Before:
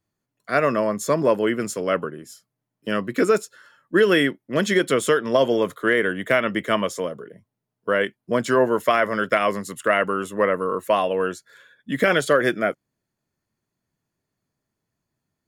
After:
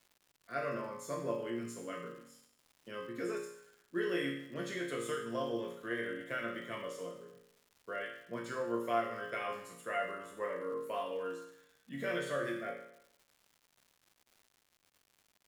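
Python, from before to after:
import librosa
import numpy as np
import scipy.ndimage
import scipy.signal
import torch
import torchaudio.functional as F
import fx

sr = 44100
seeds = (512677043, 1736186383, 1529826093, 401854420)

y = fx.resonator_bank(x, sr, root=46, chord='minor', decay_s=0.72)
y = fx.dmg_crackle(y, sr, seeds[0], per_s=260.0, level_db=-54.0)
y = F.gain(torch.from_numpy(y), 1.0).numpy()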